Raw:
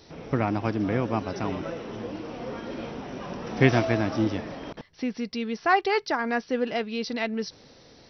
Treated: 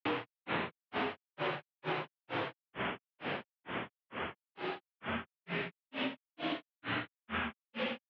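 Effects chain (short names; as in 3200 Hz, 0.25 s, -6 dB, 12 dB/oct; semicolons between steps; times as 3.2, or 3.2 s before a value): spectral contrast lowered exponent 0.37; Paulstretch 7.2×, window 1.00 s, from 4.16; grains 0.262 s, grains 2.2/s, spray 29 ms, pitch spread up and down by 12 st; mistuned SSB -65 Hz 210–3100 Hz; compressor 12:1, threshold -35 dBFS, peak gain reduction 12 dB; gain +3.5 dB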